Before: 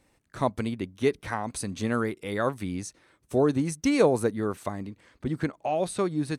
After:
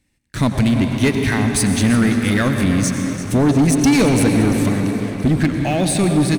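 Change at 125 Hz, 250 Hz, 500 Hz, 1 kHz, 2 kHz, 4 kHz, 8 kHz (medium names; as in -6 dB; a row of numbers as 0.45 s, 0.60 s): +16.5 dB, +14.0 dB, +4.5 dB, +6.5 dB, +13.0 dB, +15.0 dB, +16.0 dB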